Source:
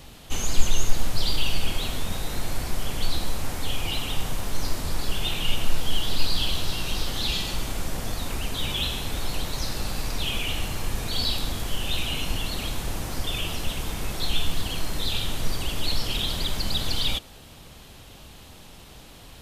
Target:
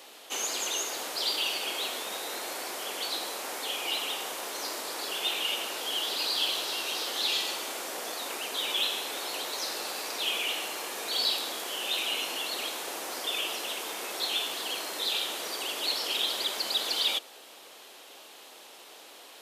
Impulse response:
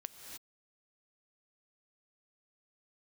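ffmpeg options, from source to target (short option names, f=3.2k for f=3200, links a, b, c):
-af "highpass=f=370:w=0.5412,highpass=f=370:w=1.3066"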